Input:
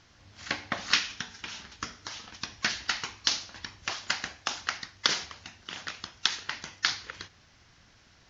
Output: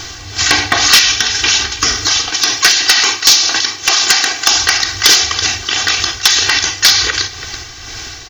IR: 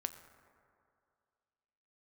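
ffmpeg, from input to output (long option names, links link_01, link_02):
-filter_complex "[0:a]aecho=1:1:2.6:0.92,aecho=1:1:331:0.0891,crystalizer=i=2.5:c=0,asettb=1/sr,asplit=3[link_01][link_02][link_03];[link_01]atrim=end=2.304[link_04];[link_02]atrim=start=2.3:end=4.5,asetpts=PTS-STARTPTS,afade=type=in:duration=0.004:curve=qsin,afade=type=out:start_time=2.196:duration=0.004:curve=qsin,highpass=210[link_05];[link_03]atrim=start=4.496[link_06];[link_04][link_05]acrossfade=duration=0.004:curve1=hsin:curve2=qsin[link_07];[link_07][link_06]acrossfade=duration=0.004:curve1=qsin:curve2=hsin,asoftclip=type=hard:threshold=-16.5dB,tremolo=f=2:d=0.51,alimiter=level_in=28dB:limit=-1dB:release=50:level=0:latency=1,volume=-1dB"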